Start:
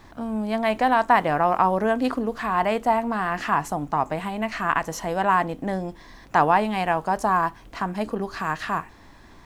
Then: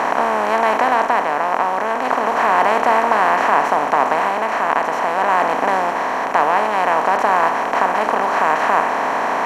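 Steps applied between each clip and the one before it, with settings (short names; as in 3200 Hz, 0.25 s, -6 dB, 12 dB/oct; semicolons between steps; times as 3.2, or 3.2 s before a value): per-bin compression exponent 0.2; tone controls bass -14 dB, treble -8 dB; AGC; gain -1 dB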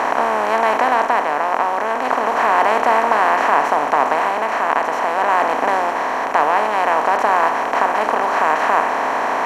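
bell 180 Hz -8 dB 0.4 oct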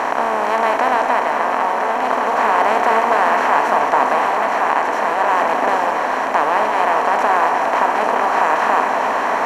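echo with dull and thin repeats by turns 0.213 s, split 930 Hz, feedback 87%, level -6.5 dB; gain -1 dB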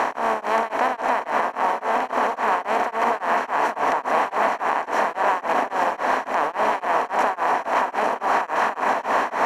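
limiter -9.5 dBFS, peak gain reduction 7.5 dB; beating tremolo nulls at 3.6 Hz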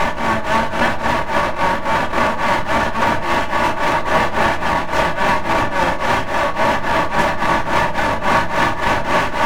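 minimum comb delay 3.4 ms; shoebox room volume 240 m³, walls furnished, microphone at 1.1 m; gain +5 dB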